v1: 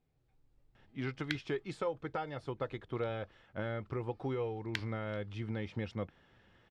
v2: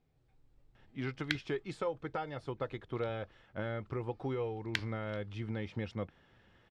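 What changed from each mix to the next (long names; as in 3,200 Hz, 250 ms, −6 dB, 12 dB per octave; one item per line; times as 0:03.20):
background +3.5 dB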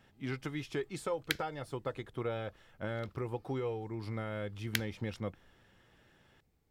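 speech: entry −0.75 s
master: remove low-pass filter 4,500 Hz 12 dB per octave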